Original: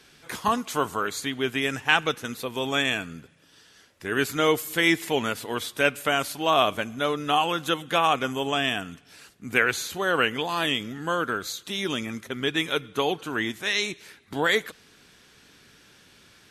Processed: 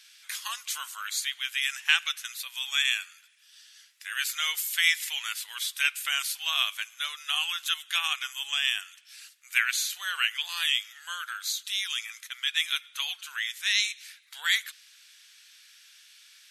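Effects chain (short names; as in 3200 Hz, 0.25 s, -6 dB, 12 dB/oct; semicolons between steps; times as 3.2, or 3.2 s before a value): Bessel high-pass 2600 Hz, order 4; gain +4 dB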